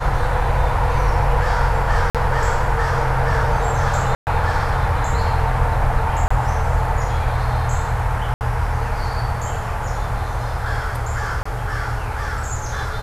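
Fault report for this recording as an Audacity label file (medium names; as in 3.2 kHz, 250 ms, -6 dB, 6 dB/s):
2.100000	2.150000	dropout 47 ms
4.150000	4.270000	dropout 119 ms
6.280000	6.300000	dropout 25 ms
8.340000	8.410000	dropout 69 ms
11.430000	11.460000	dropout 25 ms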